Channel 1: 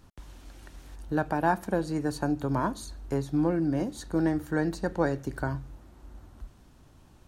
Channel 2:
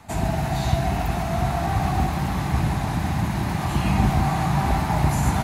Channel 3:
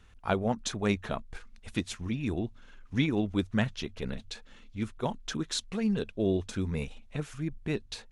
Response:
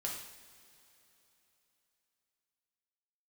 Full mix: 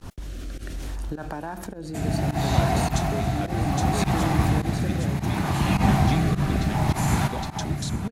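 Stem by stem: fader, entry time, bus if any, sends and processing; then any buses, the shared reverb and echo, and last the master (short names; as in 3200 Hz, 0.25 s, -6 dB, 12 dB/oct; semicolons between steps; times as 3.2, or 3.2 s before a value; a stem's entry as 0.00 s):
-1.0 dB, 0.00 s, bus A, no send, echo send -15 dB, fast leveller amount 70%
+1.5 dB, 1.85 s, no bus, no send, echo send -8 dB, HPF 65 Hz
+1.0 dB, 2.30 s, bus A, no send, echo send -4.5 dB, high shelf 5100 Hz +10.5 dB
bus A: 0.0 dB, gate -36 dBFS, range -16 dB; compressor, threshold -27 dBFS, peak gain reduction 9.5 dB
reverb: off
echo: echo 0.815 s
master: rotary speaker horn 0.65 Hz; pump 104 bpm, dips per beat 1, -18 dB, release 82 ms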